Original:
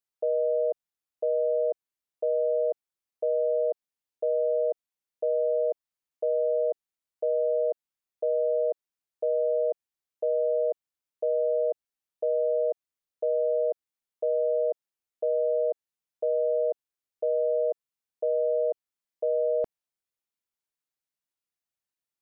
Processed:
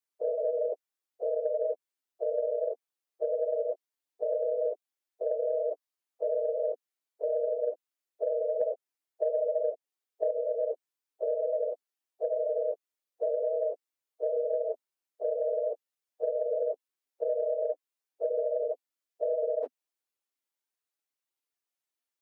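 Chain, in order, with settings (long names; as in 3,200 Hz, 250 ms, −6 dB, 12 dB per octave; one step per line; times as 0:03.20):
random phases in long frames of 50 ms
Butterworth high-pass 250 Hz 96 dB per octave
0:08.61–0:10.31: dynamic equaliser 630 Hz, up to +7 dB, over −38 dBFS, Q 1.7
downward compressor 6 to 1, threshold −26 dBFS, peak gain reduction 11 dB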